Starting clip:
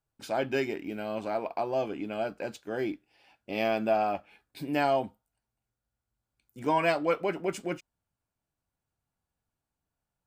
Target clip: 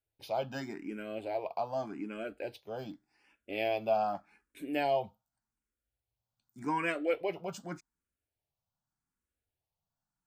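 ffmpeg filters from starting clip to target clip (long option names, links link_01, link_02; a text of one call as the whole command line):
ffmpeg -i in.wav -filter_complex "[0:a]asplit=2[link_01][link_02];[link_02]afreqshift=0.85[link_03];[link_01][link_03]amix=inputs=2:normalize=1,volume=-2.5dB" out.wav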